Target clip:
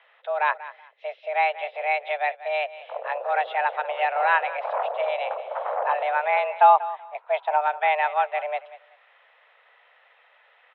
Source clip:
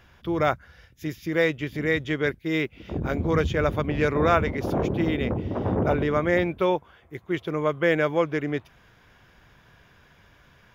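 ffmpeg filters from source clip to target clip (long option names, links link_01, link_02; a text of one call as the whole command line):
ffmpeg -i in.wav -filter_complex "[0:a]highpass=frequency=240:width_type=q:width=0.5412,highpass=frequency=240:width_type=q:width=1.307,lowpass=frequency=3100:width_type=q:width=0.5176,lowpass=frequency=3100:width_type=q:width=0.7071,lowpass=frequency=3100:width_type=q:width=1.932,afreqshift=300,asettb=1/sr,asplit=3[link_01][link_02][link_03];[link_01]atrim=end=6.524[link_04];[link_02]atrim=start=6.52:end=7.61,asetpts=PTS-STARTPTS,afade=type=in:duration=0.004:curve=qsin,afade=type=out:start_time=1.086:duration=0.004:curve=qsin,equalizer=frequency=920:width_type=o:width=0.49:gain=14.5[link_05];[link_03]atrim=start=7.606[link_06];[link_04][link_05]acrossfade=duration=0.004:curve1=hsin:curve2=qsin[link_07];[link_07][link_06]acrossfade=duration=0.004:curve1=qsin:curve2=hsin,asplit=2[link_08][link_09];[link_09]aecho=0:1:189|378:0.158|0.0333[link_10];[link_08][link_10]amix=inputs=2:normalize=0" out.wav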